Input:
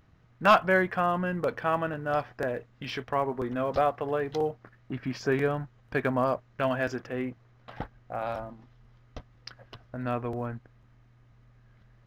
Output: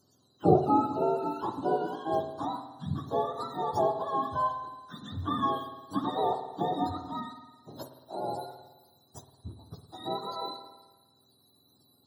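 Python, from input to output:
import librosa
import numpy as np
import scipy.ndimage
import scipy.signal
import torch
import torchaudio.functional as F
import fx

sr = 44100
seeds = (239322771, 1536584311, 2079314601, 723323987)

y = fx.octave_mirror(x, sr, pivot_hz=690.0)
y = scipy.signal.sosfilt(scipy.signal.cheby1(2, 1.0, [1200.0, 4300.0], 'bandstop', fs=sr, output='sos'), y)
y = fx.rev_spring(y, sr, rt60_s=1.2, pass_ms=(54,), chirp_ms=20, drr_db=7.5)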